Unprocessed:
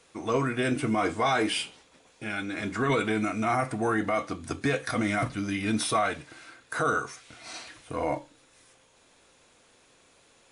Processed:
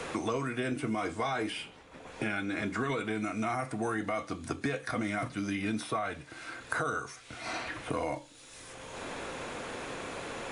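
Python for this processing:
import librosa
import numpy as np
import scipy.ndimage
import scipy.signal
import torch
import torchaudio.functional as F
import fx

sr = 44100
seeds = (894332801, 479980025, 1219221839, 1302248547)

y = fx.band_squash(x, sr, depth_pct=100)
y = y * librosa.db_to_amplitude(-6.0)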